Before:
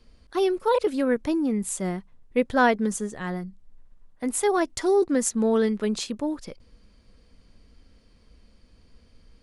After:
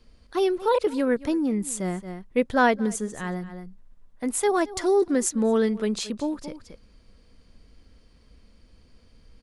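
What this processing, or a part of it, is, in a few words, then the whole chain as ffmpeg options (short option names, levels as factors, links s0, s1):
ducked delay: -filter_complex "[0:a]asplit=3[s0][s1][s2];[s1]adelay=224,volume=0.422[s3];[s2]apad=whole_len=425579[s4];[s3][s4]sidechaincompress=threshold=0.00794:ratio=6:attack=25:release=113[s5];[s0][s5]amix=inputs=2:normalize=0"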